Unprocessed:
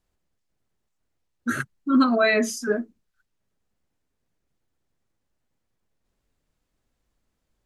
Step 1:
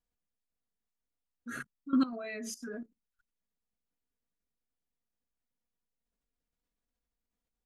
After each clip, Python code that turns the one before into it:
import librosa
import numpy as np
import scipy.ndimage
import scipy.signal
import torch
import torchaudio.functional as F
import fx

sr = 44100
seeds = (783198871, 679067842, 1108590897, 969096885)

y = x + 0.56 * np.pad(x, (int(4.2 * sr / 1000.0), 0))[:len(x)]
y = fx.level_steps(y, sr, step_db=16)
y = y * librosa.db_to_amplitude(-8.0)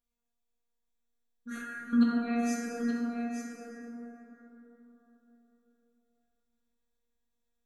y = fx.robotise(x, sr, hz=236.0)
y = y + 10.0 ** (-8.0 / 20.0) * np.pad(y, (int(873 * sr / 1000.0), 0))[:len(y)]
y = fx.rev_plate(y, sr, seeds[0], rt60_s=4.1, hf_ratio=0.35, predelay_ms=0, drr_db=-4.0)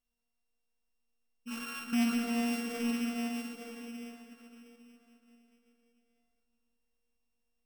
y = np.r_[np.sort(x[:len(x) // 16 * 16].reshape(-1, 16), axis=1).ravel(), x[len(x) // 16 * 16:]]
y = 10.0 ** (-24.5 / 20.0) * np.tanh(y / 10.0 ** (-24.5 / 20.0))